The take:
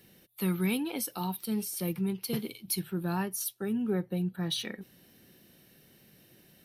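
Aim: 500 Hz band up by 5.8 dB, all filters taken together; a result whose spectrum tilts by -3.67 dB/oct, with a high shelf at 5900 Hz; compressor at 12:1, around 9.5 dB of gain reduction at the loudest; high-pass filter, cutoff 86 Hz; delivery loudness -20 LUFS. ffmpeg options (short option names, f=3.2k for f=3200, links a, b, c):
-af "highpass=86,equalizer=f=500:t=o:g=8,highshelf=f=5.9k:g=5.5,acompressor=threshold=-32dB:ratio=12,volume=16.5dB"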